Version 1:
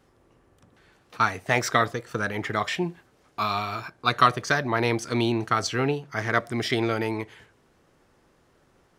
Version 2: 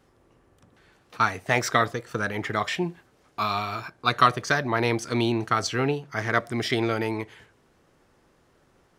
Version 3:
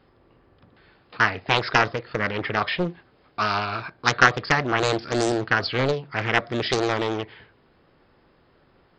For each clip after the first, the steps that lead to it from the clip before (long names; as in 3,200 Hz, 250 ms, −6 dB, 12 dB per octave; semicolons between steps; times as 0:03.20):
no processing that can be heard
linear-phase brick-wall low-pass 5,200 Hz; highs frequency-modulated by the lows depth 0.84 ms; level +3 dB